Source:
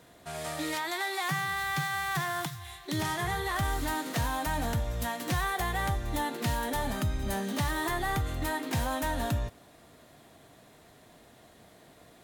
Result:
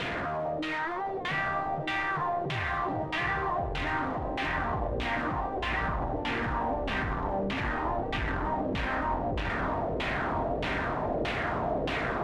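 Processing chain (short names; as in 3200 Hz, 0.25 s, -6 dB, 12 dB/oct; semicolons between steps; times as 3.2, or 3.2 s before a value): infinite clipping; diffused feedback echo 1.272 s, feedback 61%, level -4 dB; LFO low-pass saw down 1.6 Hz 470–3000 Hz; gain -1 dB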